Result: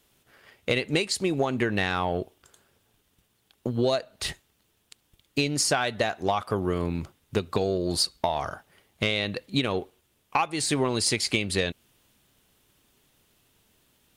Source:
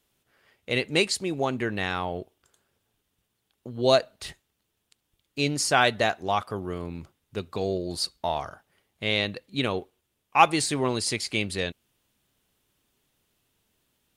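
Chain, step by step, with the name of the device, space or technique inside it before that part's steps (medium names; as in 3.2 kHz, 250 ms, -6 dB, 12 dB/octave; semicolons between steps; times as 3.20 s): drum-bus smash (transient shaper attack +5 dB, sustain +1 dB; compression 16:1, threshold -27 dBFS, peak gain reduction 20 dB; saturation -17.5 dBFS, distortion -23 dB); trim +7 dB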